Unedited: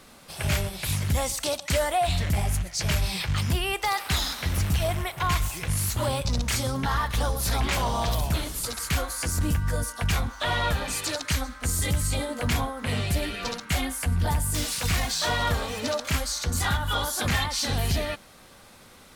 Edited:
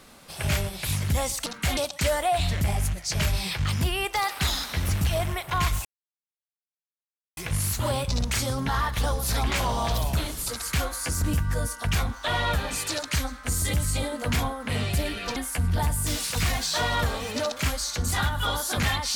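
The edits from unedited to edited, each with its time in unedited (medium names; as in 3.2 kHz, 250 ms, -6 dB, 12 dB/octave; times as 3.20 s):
5.54 s: insert silence 1.52 s
13.53–13.84 s: move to 1.46 s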